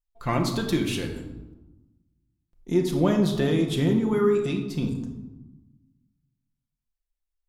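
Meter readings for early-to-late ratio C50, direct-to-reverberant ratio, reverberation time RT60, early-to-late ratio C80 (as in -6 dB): 7.0 dB, 2.0 dB, 1.1 s, 9.0 dB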